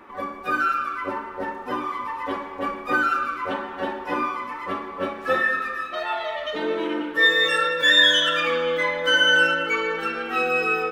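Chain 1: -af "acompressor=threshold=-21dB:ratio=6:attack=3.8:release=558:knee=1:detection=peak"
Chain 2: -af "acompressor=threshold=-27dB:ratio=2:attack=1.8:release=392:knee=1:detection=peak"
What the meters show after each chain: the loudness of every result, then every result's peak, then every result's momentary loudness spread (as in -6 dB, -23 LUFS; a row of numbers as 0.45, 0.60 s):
-27.0, -28.0 LUFS; -14.5, -14.5 dBFS; 7, 9 LU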